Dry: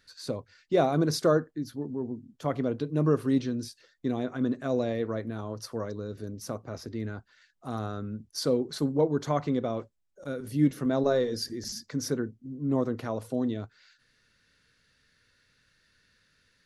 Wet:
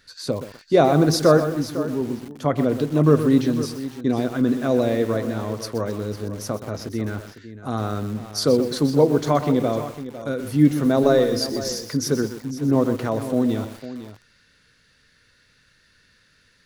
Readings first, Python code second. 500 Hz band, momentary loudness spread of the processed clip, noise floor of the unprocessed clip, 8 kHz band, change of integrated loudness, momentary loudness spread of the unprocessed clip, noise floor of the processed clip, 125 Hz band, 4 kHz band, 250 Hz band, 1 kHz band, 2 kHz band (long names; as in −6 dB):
+8.5 dB, 13 LU, −69 dBFS, +8.5 dB, +8.5 dB, 13 LU, −60 dBFS, +8.5 dB, +8.5 dB, +8.5 dB, +8.5 dB, +9.0 dB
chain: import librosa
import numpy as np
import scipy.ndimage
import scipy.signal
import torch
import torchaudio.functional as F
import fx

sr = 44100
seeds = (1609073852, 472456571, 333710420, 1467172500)

y = x + 10.0 ** (-13.5 / 20.0) * np.pad(x, (int(503 * sr / 1000.0), 0))[:len(x)]
y = fx.echo_crushed(y, sr, ms=125, feedback_pct=35, bits=7, wet_db=-10.0)
y = F.gain(torch.from_numpy(y), 8.0).numpy()